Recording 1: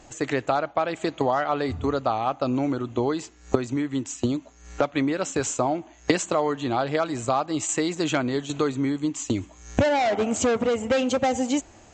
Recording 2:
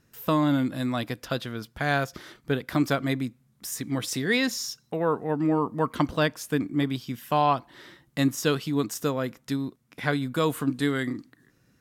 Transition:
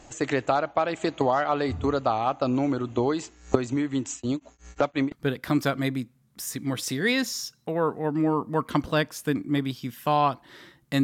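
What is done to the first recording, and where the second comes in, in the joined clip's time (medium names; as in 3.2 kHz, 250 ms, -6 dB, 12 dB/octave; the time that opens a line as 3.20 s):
recording 1
4.14–5.12 s: tremolo of two beating tones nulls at 5.7 Hz
5.12 s: go over to recording 2 from 2.37 s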